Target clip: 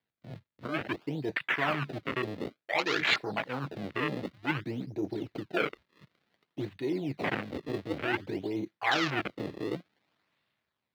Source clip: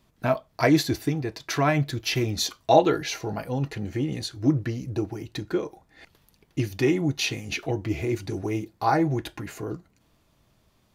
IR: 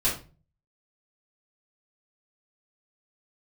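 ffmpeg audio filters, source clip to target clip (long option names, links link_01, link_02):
-filter_complex "[0:a]acrusher=samples=33:mix=1:aa=0.000001:lfo=1:lforange=52.8:lforate=0.55,areverse,acompressor=threshold=-32dB:ratio=10,areverse,equalizer=frequency=2000:width_type=o:width=1:gain=7,equalizer=frequency=4000:width_type=o:width=1:gain=12,equalizer=frequency=8000:width_type=o:width=1:gain=-5,asoftclip=type=tanh:threshold=-16.5dB,afwtdn=0.0158,highpass=93,equalizer=frequency=1400:width_type=o:width=2.6:gain=5,acrossover=split=140[link_01][link_02];[link_02]dynaudnorm=framelen=110:gausssize=13:maxgain=11.5dB[link_03];[link_01][link_03]amix=inputs=2:normalize=0,volume=-8.5dB"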